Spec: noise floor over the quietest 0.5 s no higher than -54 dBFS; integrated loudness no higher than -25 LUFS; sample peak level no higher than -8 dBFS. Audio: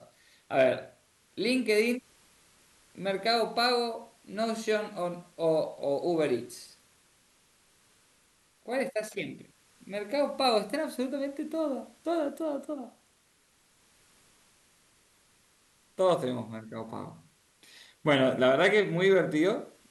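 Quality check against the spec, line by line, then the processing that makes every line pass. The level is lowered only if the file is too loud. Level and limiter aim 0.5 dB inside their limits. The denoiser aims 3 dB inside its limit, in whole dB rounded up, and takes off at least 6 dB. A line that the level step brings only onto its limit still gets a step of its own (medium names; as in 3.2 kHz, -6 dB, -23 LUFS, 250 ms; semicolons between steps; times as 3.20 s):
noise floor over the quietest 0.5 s -67 dBFS: pass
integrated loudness -29.0 LUFS: pass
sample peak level -12.5 dBFS: pass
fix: none needed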